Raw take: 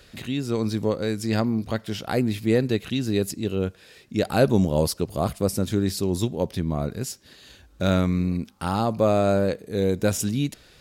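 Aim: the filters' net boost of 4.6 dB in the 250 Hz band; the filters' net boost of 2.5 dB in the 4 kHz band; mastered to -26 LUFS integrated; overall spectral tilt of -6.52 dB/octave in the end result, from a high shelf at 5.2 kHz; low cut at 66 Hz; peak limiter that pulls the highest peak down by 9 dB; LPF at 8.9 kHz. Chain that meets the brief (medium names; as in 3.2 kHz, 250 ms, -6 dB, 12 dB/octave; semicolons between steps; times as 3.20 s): high-pass 66 Hz; low-pass 8.9 kHz; peaking EQ 250 Hz +6 dB; peaking EQ 4 kHz +5.5 dB; treble shelf 5.2 kHz -6 dB; trim -2 dB; peak limiter -14 dBFS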